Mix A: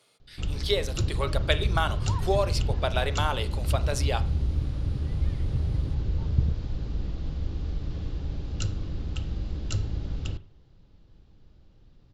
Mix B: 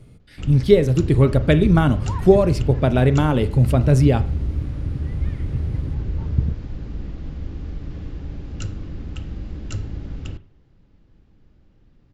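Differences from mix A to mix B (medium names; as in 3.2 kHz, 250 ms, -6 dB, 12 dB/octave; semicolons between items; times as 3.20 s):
speech: remove high-pass 830 Hz 12 dB/octave; second sound +3.5 dB; master: add graphic EQ 250/2000/4000 Hz +5/+5/-6 dB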